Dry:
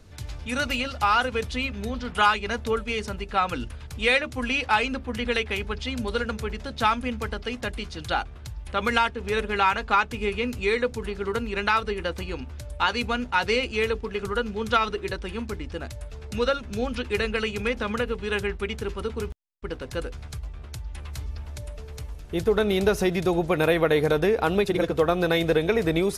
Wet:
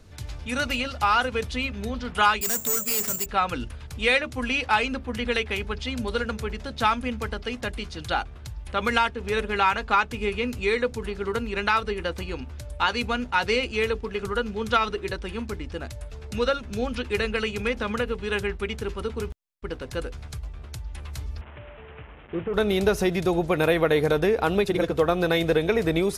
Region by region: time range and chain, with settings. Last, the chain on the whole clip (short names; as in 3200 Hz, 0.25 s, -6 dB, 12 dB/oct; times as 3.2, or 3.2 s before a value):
2.41–3.26 HPF 110 Hz 24 dB/oct + hard clip -30 dBFS + careless resampling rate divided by 6×, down none, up zero stuff
21.41–22.54 delta modulation 16 kbps, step -39.5 dBFS + HPF 190 Hz 6 dB/oct + careless resampling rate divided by 6×, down none, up filtered
whole clip: dry